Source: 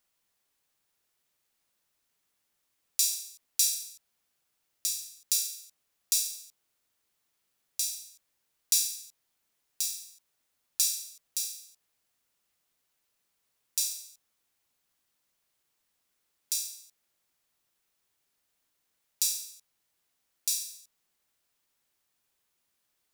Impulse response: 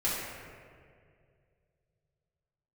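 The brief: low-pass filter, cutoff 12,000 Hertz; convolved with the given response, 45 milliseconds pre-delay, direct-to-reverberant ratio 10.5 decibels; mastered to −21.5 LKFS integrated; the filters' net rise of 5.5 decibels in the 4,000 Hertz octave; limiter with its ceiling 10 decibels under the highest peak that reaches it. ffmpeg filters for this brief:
-filter_complex "[0:a]lowpass=12000,equalizer=frequency=4000:width_type=o:gain=7.5,alimiter=limit=-13dB:level=0:latency=1,asplit=2[link_01][link_02];[1:a]atrim=start_sample=2205,adelay=45[link_03];[link_02][link_03]afir=irnorm=-1:irlink=0,volume=-19.5dB[link_04];[link_01][link_04]amix=inputs=2:normalize=0,volume=8.5dB"

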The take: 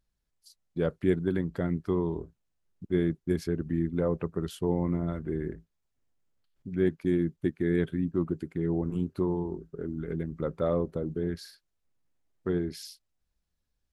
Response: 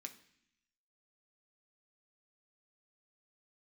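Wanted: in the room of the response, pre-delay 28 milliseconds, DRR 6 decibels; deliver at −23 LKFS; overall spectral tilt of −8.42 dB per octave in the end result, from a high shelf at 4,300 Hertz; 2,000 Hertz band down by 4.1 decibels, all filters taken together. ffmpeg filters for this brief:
-filter_complex "[0:a]equalizer=frequency=2000:width_type=o:gain=-4,highshelf=frequency=4300:gain=-6.5,asplit=2[link_01][link_02];[1:a]atrim=start_sample=2205,adelay=28[link_03];[link_02][link_03]afir=irnorm=-1:irlink=0,volume=-1dB[link_04];[link_01][link_04]amix=inputs=2:normalize=0,volume=7.5dB"

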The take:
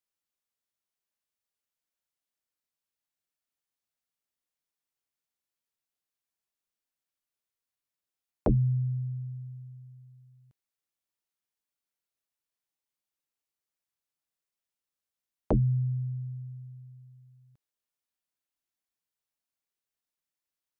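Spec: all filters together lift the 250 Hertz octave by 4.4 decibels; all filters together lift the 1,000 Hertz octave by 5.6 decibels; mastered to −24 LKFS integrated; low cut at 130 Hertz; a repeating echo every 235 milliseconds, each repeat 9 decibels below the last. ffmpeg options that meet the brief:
ffmpeg -i in.wav -af "highpass=130,equalizer=frequency=250:width_type=o:gain=7,equalizer=frequency=1000:width_type=o:gain=7,aecho=1:1:235|470|705|940:0.355|0.124|0.0435|0.0152,volume=5dB" out.wav

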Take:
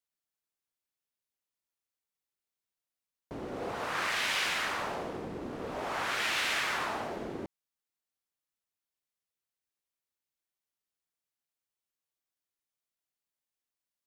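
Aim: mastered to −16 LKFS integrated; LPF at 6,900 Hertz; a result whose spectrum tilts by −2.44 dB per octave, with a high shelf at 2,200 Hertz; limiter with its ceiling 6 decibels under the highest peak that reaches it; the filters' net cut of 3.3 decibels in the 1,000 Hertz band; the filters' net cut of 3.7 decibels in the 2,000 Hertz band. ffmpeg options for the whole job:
ffmpeg -i in.wav -af "lowpass=6900,equalizer=frequency=1000:width_type=o:gain=-3.5,equalizer=frequency=2000:width_type=o:gain=-6.5,highshelf=frequency=2200:gain=5,volume=20dB,alimiter=limit=-6dB:level=0:latency=1" out.wav

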